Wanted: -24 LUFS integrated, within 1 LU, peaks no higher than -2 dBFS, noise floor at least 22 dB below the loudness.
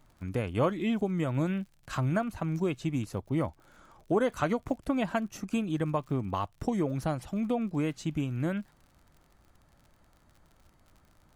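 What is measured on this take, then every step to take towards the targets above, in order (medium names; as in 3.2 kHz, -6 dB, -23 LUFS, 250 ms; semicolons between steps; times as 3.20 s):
tick rate 61 per s; loudness -31.5 LUFS; peak level -15.0 dBFS; loudness target -24.0 LUFS
-> de-click; trim +7.5 dB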